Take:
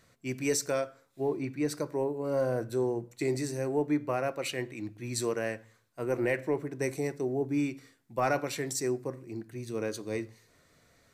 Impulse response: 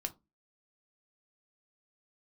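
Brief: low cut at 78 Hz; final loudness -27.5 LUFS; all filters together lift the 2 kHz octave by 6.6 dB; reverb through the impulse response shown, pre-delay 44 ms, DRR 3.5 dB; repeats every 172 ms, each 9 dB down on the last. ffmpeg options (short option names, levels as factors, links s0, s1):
-filter_complex "[0:a]highpass=78,equalizer=f=2000:t=o:g=8,aecho=1:1:172|344|516|688:0.355|0.124|0.0435|0.0152,asplit=2[s0][s1];[1:a]atrim=start_sample=2205,adelay=44[s2];[s1][s2]afir=irnorm=-1:irlink=0,volume=0.708[s3];[s0][s3]amix=inputs=2:normalize=0,volume=1.19"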